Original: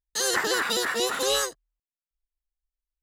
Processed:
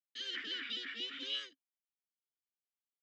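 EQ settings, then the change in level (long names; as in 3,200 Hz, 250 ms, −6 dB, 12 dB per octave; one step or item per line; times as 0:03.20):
formant filter i
loudspeaker in its box 120–4,300 Hz, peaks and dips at 150 Hz −4 dB, 460 Hz −5 dB, 2,100 Hz −8 dB, 4,100 Hz −7 dB
tilt shelving filter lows −9.5 dB, about 1,300 Hz
+1.0 dB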